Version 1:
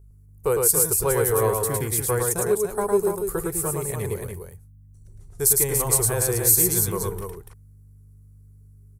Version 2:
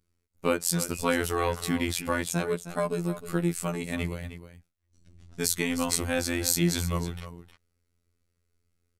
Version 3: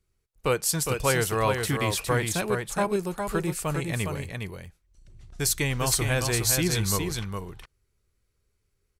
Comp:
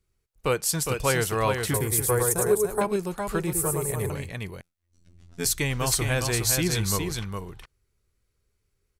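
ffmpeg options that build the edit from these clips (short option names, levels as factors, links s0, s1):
-filter_complex "[0:a]asplit=2[s0][s1];[2:a]asplit=4[s2][s3][s4][s5];[s2]atrim=end=1.742[s6];[s0]atrim=start=1.738:end=2.812[s7];[s3]atrim=start=2.808:end=3.532[s8];[s1]atrim=start=3.528:end=4.102[s9];[s4]atrim=start=4.098:end=4.612[s10];[1:a]atrim=start=4.608:end=5.452[s11];[s5]atrim=start=5.448[s12];[s6][s7]acrossfade=d=0.004:c1=hsin:c2=hsin[s13];[s13][s8]acrossfade=d=0.004:c1=hsin:c2=hsin[s14];[s14][s9]acrossfade=d=0.004:c1=hsin:c2=hsin[s15];[s15][s10]acrossfade=d=0.004:c1=hsin:c2=hsin[s16];[s16][s11]acrossfade=d=0.004:c1=hsin:c2=hsin[s17];[s17][s12]acrossfade=d=0.004:c1=hsin:c2=hsin"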